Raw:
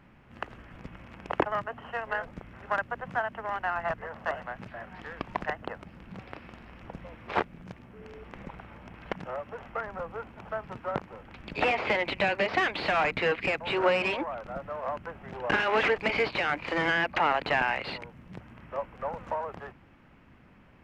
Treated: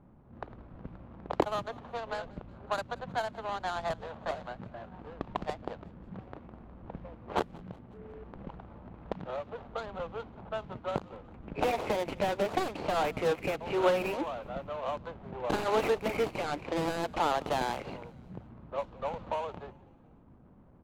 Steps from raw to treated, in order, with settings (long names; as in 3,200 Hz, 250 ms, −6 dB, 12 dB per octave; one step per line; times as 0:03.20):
running median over 25 samples
low-pass that shuts in the quiet parts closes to 1,300 Hz, open at −27.5 dBFS
echo with shifted repeats 182 ms, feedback 57%, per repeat −38 Hz, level −23.5 dB